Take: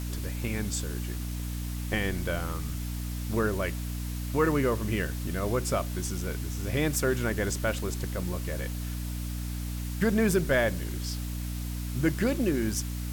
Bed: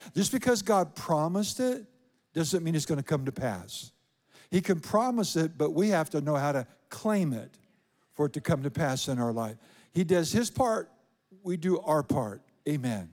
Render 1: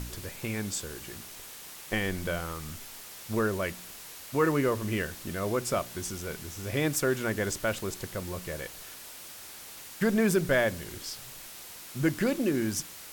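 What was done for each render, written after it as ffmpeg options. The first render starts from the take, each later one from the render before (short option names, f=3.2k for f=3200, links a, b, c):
-af "bandreject=f=60:t=h:w=4,bandreject=f=120:t=h:w=4,bandreject=f=180:t=h:w=4,bandreject=f=240:t=h:w=4,bandreject=f=300:t=h:w=4"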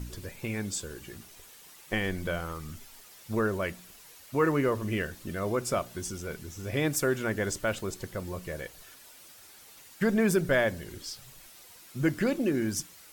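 -af "afftdn=nr=9:nf=-46"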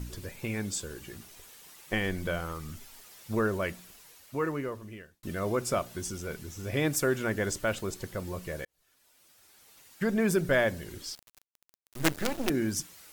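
-filter_complex "[0:a]asettb=1/sr,asplit=3[a][b][c];[a]atrim=end=11.154[d];[b]atrim=start=11.15:end=12.5,asetpts=PTS-STARTPTS,afade=t=in:d=0.004:c=qsin,afade=t=out:st=1.346:d=0.004:c=qsin,acrusher=bits=4:dc=4:mix=0:aa=0.000001[e];[c]atrim=start=12.496[f];[d][e]acrossfade=d=0.004:c1=hsin:c2=qsin[g];[g][f]acrossfade=d=0.004:c1=qsin:c2=hsin,asplit=3[h][i][j];[h]atrim=end=5.23,asetpts=PTS-STARTPTS,afade=t=out:st=3.74:d=1.49[k];[i]atrim=start=5.23:end=8.65,asetpts=PTS-STARTPTS,afade=t=in:d=0.004:c=hsin,afade=t=out:st=3.416:d=0.004:c=hsin[l];[j]atrim=start=8.65,asetpts=PTS-STARTPTS,afade=t=in:d=1.93[m];[k][l][m]concat=n=3:v=0:a=1"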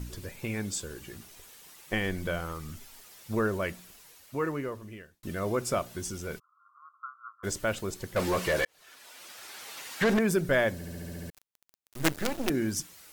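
-filter_complex "[0:a]asplit=3[a][b][c];[a]afade=t=out:st=6.38:d=0.02[d];[b]asuperpass=centerf=1200:order=12:qfactor=3.5,afade=t=in:st=6.38:d=0.02,afade=t=out:st=7.43:d=0.02[e];[c]afade=t=in:st=7.43:d=0.02[f];[d][e][f]amix=inputs=3:normalize=0,asettb=1/sr,asplit=3[g][h][i];[g]atrim=end=8.164[j];[h]atrim=start=8.16:end=10.19,asetpts=PTS-STARTPTS,afade=t=in:d=0.004:c=qsin,afade=t=out:st=2.026:d=0.004:c=qsin,asplit=2[k][l];[l]highpass=f=720:p=1,volume=26dB,asoftclip=type=tanh:threshold=-16.5dB[m];[k][m]amix=inputs=2:normalize=0,lowpass=f=3.4k:p=1,volume=-6dB[n];[i]atrim=start=10.186[o];[j][n]acrossfade=d=0.004:c1=hsin:c2=qsin[p];[p][o]acrossfade=d=0.004:c1=qsin:c2=hsin,asplit=9[q][r][s][t][u][v][w][x][y];[q]atrim=end=10.812[z];[r]atrim=start=10.738:end=10.812[aa];[s]atrim=start=10.738:end=10.812[ab];[t]atrim=start=10.738:end=10.812[ac];[u]atrim=start=10.738:end=10.812[ad];[v]atrim=start=10.738:end=10.812[ae];[w]atrim=start=10.738:end=10.812[af];[x]atrim=start=10.738:end=10.812[ag];[y]atrim=start=11.298[ah];[z][aa]acrossfade=d=0.004:c1=hsin:c2=hsin[ai];[ai][ab]acrossfade=d=0.004:c1=hsin:c2=hsin[aj];[aj][ac]acrossfade=d=0.004:c1=hsin:c2=hsin[ak];[ak][ad]acrossfade=d=0.004:c1=hsin:c2=hsin[al];[al][ae]acrossfade=d=0.004:c1=hsin:c2=hsin[am];[am][af]acrossfade=d=0.004:c1=hsin:c2=hsin[an];[an][ag]acrossfade=d=0.004:c1=hsin:c2=hsin[ao];[ao][ah]acrossfade=d=0.004:c1=hsin:c2=hsin"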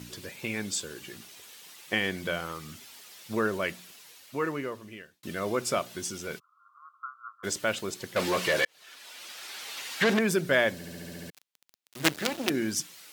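-af "highpass=150,equalizer=f=3.4k:w=0.72:g=6.5"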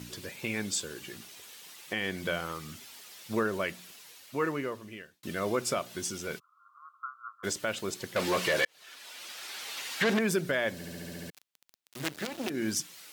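-af "alimiter=limit=-18dB:level=0:latency=1:release=204"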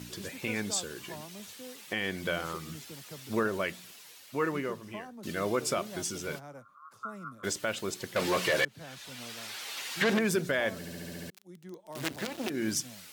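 -filter_complex "[1:a]volume=-19dB[a];[0:a][a]amix=inputs=2:normalize=0"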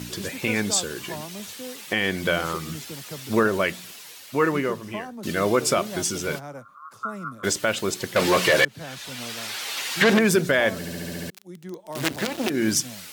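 -af "volume=9dB"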